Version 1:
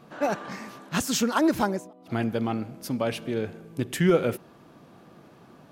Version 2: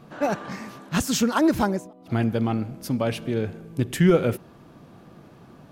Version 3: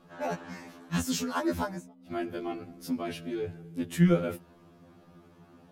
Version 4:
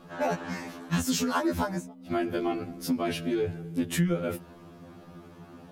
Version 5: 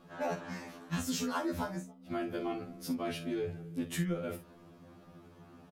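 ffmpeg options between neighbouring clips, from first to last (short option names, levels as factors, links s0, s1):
-af "lowshelf=f=130:g=11,volume=1.12"
-af "afftfilt=real='re*2*eq(mod(b,4),0)':imag='im*2*eq(mod(b,4),0)':win_size=2048:overlap=0.75,volume=0.562"
-af "acompressor=threshold=0.0282:ratio=6,volume=2.37"
-af "aecho=1:1:44|54:0.299|0.158,volume=0.422"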